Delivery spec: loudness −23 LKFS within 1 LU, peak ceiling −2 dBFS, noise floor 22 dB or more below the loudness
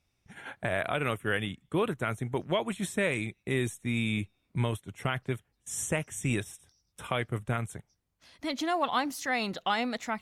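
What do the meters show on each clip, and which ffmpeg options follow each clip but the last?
integrated loudness −32.0 LKFS; sample peak −14.0 dBFS; target loudness −23.0 LKFS
→ -af "volume=9dB"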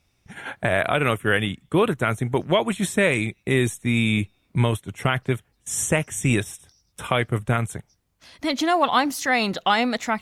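integrated loudness −23.0 LKFS; sample peak −5.0 dBFS; background noise floor −68 dBFS

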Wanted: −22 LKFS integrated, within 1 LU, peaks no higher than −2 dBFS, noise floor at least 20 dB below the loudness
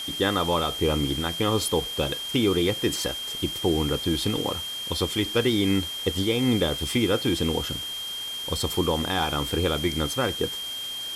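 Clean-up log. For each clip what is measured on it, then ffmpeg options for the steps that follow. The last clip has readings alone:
interfering tone 3,200 Hz; level of the tone −31 dBFS; background noise floor −33 dBFS; target noise floor −45 dBFS; integrated loudness −25.0 LKFS; sample peak −10.5 dBFS; target loudness −22.0 LKFS
→ -af "bandreject=frequency=3200:width=30"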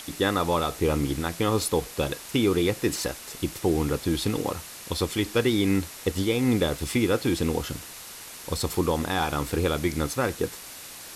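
interfering tone none found; background noise floor −42 dBFS; target noise floor −47 dBFS
→ -af "afftdn=noise_reduction=6:noise_floor=-42"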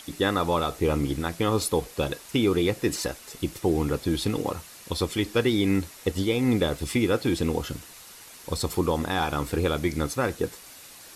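background noise floor −47 dBFS; integrated loudness −26.5 LKFS; sample peak −11.5 dBFS; target loudness −22.0 LKFS
→ -af "volume=4.5dB"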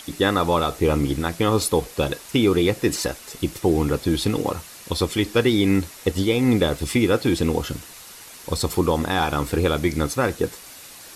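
integrated loudness −22.0 LKFS; sample peak −7.0 dBFS; background noise floor −42 dBFS

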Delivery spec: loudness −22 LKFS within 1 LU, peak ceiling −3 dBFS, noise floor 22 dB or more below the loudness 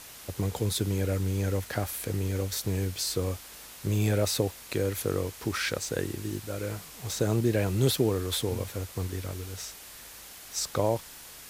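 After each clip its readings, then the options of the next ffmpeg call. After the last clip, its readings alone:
background noise floor −47 dBFS; target noise floor −52 dBFS; integrated loudness −30.0 LKFS; sample peak −11.5 dBFS; target loudness −22.0 LKFS
→ -af "afftdn=noise_reduction=6:noise_floor=-47"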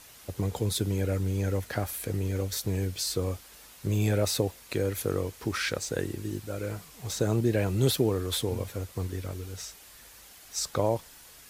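background noise floor −52 dBFS; target noise floor −53 dBFS
→ -af "afftdn=noise_reduction=6:noise_floor=-52"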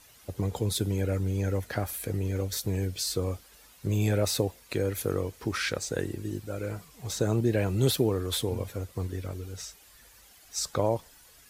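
background noise floor −56 dBFS; integrated loudness −30.0 LKFS; sample peak −12.0 dBFS; target loudness −22.0 LKFS
→ -af "volume=8dB"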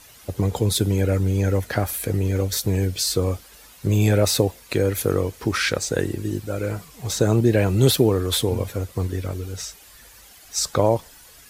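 integrated loudness −22.0 LKFS; sample peak −4.0 dBFS; background noise floor −48 dBFS

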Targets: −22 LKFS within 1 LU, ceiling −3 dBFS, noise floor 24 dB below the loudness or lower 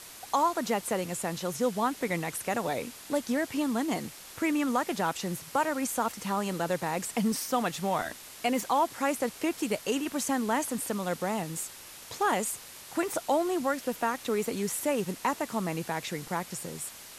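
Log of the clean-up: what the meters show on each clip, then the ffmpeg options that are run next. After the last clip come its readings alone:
background noise floor −47 dBFS; target noise floor −55 dBFS; integrated loudness −30.5 LKFS; sample peak −15.0 dBFS; target loudness −22.0 LKFS
→ -af "afftdn=noise_reduction=8:noise_floor=-47"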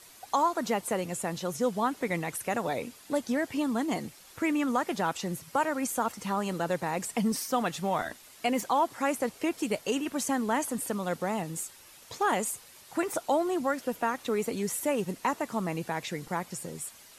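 background noise floor −53 dBFS; target noise floor −55 dBFS
→ -af "afftdn=noise_reduction=6:noise_floor=-53"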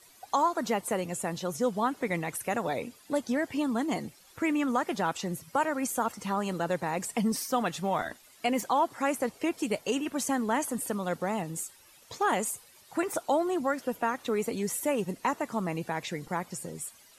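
background noise floor −57 dBFS; integrated loudness −31.0 LKFS; sample peak −15.5 dBFS; target loudness −22.0 LKFS
→ -af "volume=9dB"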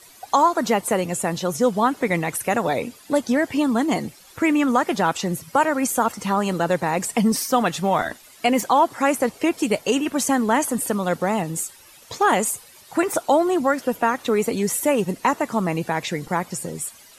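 integrated loudness −22.0 LKFS; sample peak −6.5 dBFS; background noise floor −48 dBFS

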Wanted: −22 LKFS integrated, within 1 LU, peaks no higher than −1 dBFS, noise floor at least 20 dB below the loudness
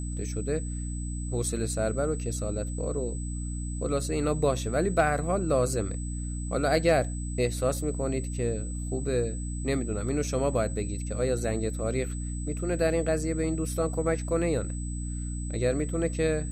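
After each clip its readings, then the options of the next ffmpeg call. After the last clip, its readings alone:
mains hum 60 Hz; hum harmonics up to 300 Hz; level of the hum −31 dBFS; interfering tone 8,000 Hz; level of the tone −42 dBFS; integrated loudness −29.0 LKFS; sample peak −11.5 dBFS; target loudness −22.0 LKFS
→ -af "bandreject=frequency=60:width_type=h:width=4,bandreject=frequency=120:width_type=h:width=4,bandreject=frequency=180:width_type=h:width=4,bandreject=frequency=240:width_type=h:width=4,bandreject=frequency=300:width_type=h:width=4"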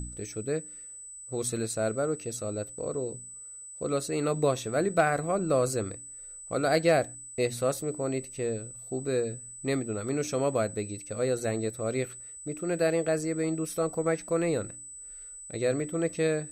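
mains hum none found; interfering tone 8,000 Hz; level of the tone −42 dBFS
→ -af "bandreject=frequency=8000:width=30"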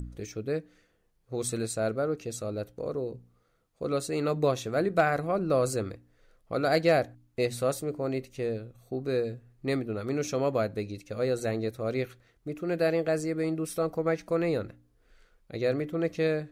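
interfering tone none found; integrated loudness −30.0 LKFS; sample peak −13.0 dBFS; target loudness −22.0 LKFS
→ -af "volume=8dB"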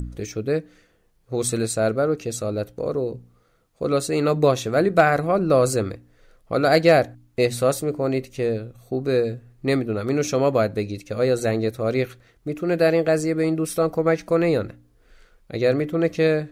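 integrated loudness −22.0 LKFS; sample peak −5.0 dBFS; background noise floor −61 dBFS

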